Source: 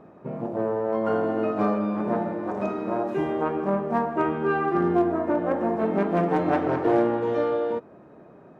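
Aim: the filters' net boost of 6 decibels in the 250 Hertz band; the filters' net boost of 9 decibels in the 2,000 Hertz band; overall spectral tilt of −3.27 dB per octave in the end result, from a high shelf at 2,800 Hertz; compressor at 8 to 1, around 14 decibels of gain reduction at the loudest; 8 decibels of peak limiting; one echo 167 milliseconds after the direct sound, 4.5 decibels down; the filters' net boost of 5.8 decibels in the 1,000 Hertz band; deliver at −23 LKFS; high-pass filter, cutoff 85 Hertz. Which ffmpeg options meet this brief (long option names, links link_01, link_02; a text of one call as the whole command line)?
ffmpeg -i in.wav -af "highpass=85,equalizer=frequency=250:width_type=o:gain=8,equalizer=frequency=1000:width_type=o:gain=4.5,equalizer=frequency=2000:width_type=o:gain=7.5,highshelf=frequency=2800:gain=7.5,acompressor=threshold=-28dB:ratio=8,alimiter=level_in=2.5dB:limit=-24dB:level=0:latency=1,volume=-2.5dB,aecho=1:1:167:0.596,volume=11dB" out.wav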